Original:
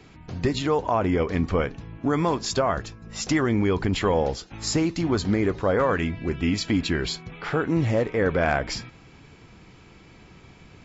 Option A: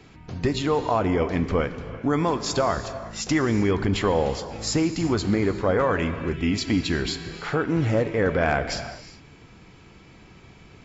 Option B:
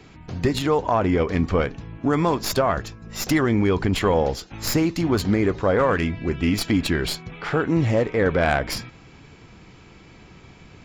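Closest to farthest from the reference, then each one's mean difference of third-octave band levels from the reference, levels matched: B, A; 1.0, 2.5 dB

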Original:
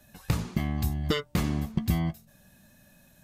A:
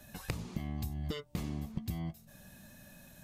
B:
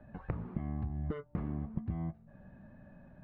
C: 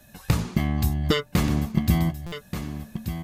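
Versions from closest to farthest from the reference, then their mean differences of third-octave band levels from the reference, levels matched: C, A, B; 4.5, 6.5, 10.0 dB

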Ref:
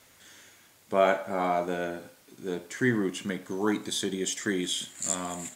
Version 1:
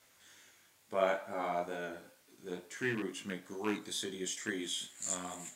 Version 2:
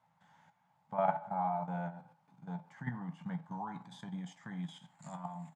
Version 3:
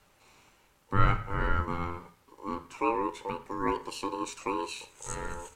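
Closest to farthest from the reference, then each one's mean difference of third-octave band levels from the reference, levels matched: 1, 3, 2; 2.0, 7.5, 11.5 dB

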